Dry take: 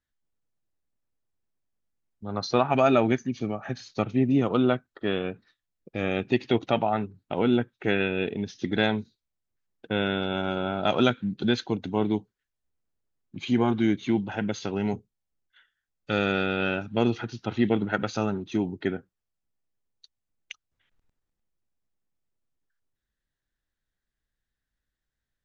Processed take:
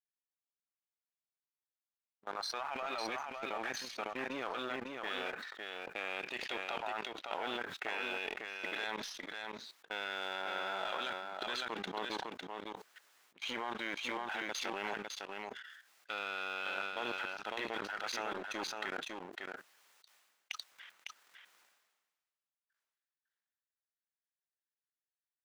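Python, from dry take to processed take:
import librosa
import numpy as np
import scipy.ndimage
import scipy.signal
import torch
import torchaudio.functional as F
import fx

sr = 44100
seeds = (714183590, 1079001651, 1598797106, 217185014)

y = np.where(x < 0.0, 10.0 ** (-7.0 / 20.0) * x, x)
y = scipy.signal.sosfilt(scipy.signal.butter(2, 1100.0, 'highpass', fs=sr, output='sos'), y)
y = fx.high_shelf(y, sr, hz=4200.0, db=-9.0)
y = fx.leveller(y, sr, passes=1)
y = fx.level_steps(y, sr, step_db=23)
y = y + 10.0 ** (-4.5 / 20.0) * np.pad(y, (int(554 * sr / 1000.0), 0))[:len(y)]
y = fx.sustainer(y, sr, db_per_s=42.0)
y = F.gain(torch.from_numpy(y), 6.0).numpy()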